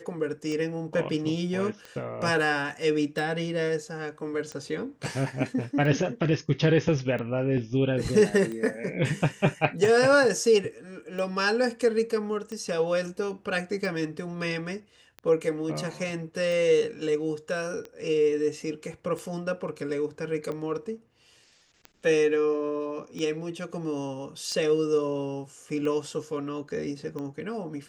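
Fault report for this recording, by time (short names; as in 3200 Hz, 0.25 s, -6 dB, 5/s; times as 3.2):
tick 45 rpm -24 dBFS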